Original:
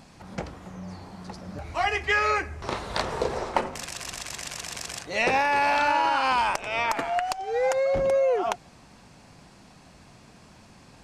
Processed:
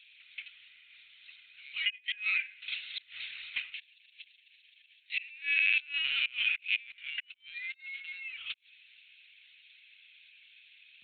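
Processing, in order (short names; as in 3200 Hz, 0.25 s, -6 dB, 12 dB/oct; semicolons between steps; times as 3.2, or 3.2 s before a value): elliptic high-pass 2400 Hz, stop band 80 dB; flipped gate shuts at -22 dBFS, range -25 dB; LPC vocoder at 8 kHz pitch kept; gain +6.5 dB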